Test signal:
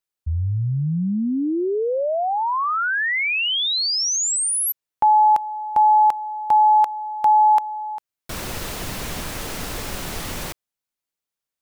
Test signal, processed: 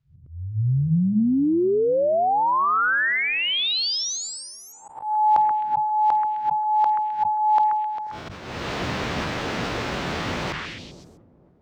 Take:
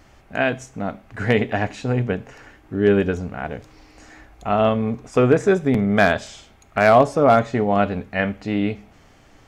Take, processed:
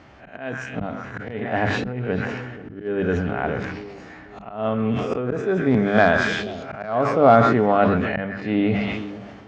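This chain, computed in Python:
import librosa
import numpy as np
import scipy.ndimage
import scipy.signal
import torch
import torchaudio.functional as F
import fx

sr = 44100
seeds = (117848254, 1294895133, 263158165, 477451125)

p1 = fx.spec_swells(x, sr, rise_s=0.34)
p2 = fx.air_absorb(p1, sr, metres=180.0)
p3 = fx.echo_wet_lowpass(p2, sr, ms=484, feedback_pct=50, hz=480.0, wet_db=-20.0)
p4 = fx.dynamic_eq(p3, sr, hz=2400.0, q=1.7, threshold_db=-35.0, ratio=4.0, max_db=-4)
p5 = fx.rider(p4, sr, range_db=5, speed_s=2.0)
p6 = p4 + (p5 * 10.0 ** (-2.0 / 20.0))
p7 = scipy.signal.sosfilt(scipy.signal.butter(2, 85.0, 'highpass', fs=sr, output='sos'), p6)
p8 = p7 + fx.echo_stepped(p7, sr, ms=130, hz=1500.0, octaves=0.7, feedback_pct=70, wet_db=-8.0, dry=0)
p9 = fx.auto_swell(p8, sr, attack_ms=435.0)
p10 = fx.hum_notches(p9, sr, base_hz=50, count=4)
p11 = fx.sustainer(p10, sr, db_per_s=34.0)
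y = p11 * 10.0 ** (-3.5 / 20.0)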